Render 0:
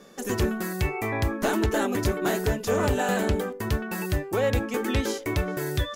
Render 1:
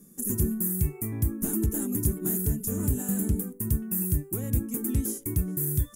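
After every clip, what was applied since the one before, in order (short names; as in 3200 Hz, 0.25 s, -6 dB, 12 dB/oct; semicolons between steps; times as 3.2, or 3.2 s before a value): EQ curve 100 Hz 0 dB, 160 Hz +4 dB, 340 Hz -5 dB, 580 Hz -23 dB, 1100 Hz -20 dB, 4200 Hz -21 dB, 9700 Hz +12 dB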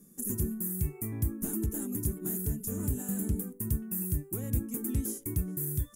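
vocal rider 0.5 s; gain -5 dB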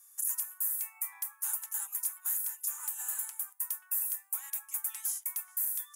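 steep high-pass 810 Hz 96 dB/oct; gain +4 dB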